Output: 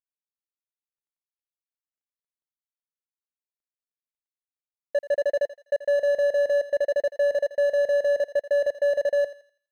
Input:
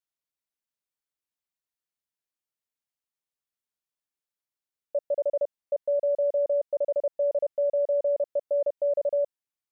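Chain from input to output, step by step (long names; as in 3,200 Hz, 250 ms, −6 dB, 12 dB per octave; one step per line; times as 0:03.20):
running median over 41 samples
feedback echo with a high-pass in the loop 83 ms, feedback 39%, high-pass 750 Hz, level −12.5 dB
level +5.5 dB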